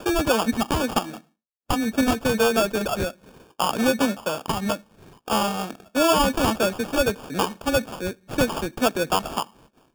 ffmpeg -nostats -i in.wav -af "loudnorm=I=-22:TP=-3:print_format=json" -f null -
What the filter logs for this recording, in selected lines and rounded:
"input_i" : "-24.0",
"input_tp" : "-7.4",
"input_lra" : "2.8",
"input_thresh" : "-34.5",